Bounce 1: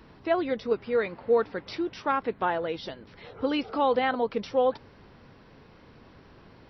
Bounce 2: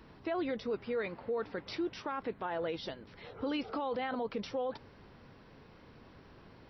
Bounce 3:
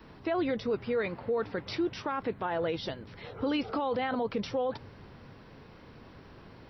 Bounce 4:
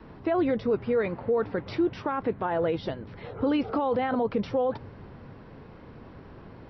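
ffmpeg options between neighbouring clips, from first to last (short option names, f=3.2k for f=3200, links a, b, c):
-af "alimiter=limit=-24dB:level=0:latency=1:release=24,volume=-3.5dB"
-af "adynamicequalizer=threshold=0.00112:dfrequency=110:dqfactor=1.4:tfrequency=110:tqfactor=1.4:attack=5:release=100:ratio=0.375:range=3.5:mode=boostabove:tftype=bell,volume=4.5dB"
-af "lowpass=f=1.3k:p=1,volume=5.5dB"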